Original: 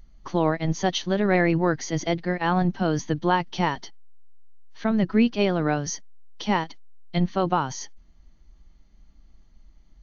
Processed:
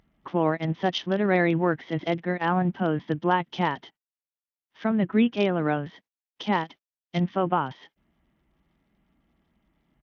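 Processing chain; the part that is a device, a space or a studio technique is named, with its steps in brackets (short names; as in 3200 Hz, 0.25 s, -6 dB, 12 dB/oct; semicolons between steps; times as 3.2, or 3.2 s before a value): Bluetooth headset (HPF 130 Hz 12 dB/oct; downsampling 8000 Hz; gain -1 dB; SBC 64 kbps 48000 Hz)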